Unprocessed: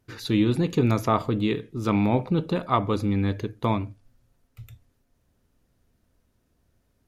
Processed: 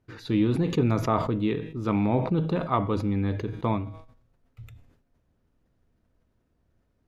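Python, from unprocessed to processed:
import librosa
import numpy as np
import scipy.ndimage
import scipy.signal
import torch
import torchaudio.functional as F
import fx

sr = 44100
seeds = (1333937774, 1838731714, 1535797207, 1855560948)

y = fx.lowpass(x, sr, hz=2100.0, slope=6)
y = fx.comb_fb(y, sr, f0_hz=160.0, decay_s=0.72, harmonics='all', damping=0.0, mix_pct=50)
y = fx.sustainer(y, sr, db_per_s=80.0)
y = y * librosa.db_to_amplitude(3.5)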